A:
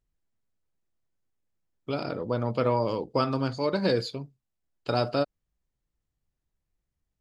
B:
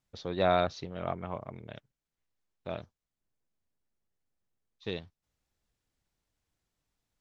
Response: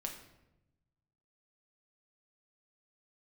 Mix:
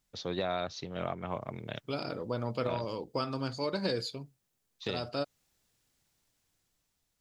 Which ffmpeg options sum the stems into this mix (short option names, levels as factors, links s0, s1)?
-filter_complex "[0:a]volume=0.531[s0];[1:a]highpass=f=88:w=0.5412,highpass=f=88:w=1.3066,dynaudnorm=f=320:g=7:m=1.88,volume=1[s1];[s0][s1]amix=inputs=2:normalize=0,highshelf=f=3200:g=8,alimiter=limit=0.0891:level=0:latency=1:release=411"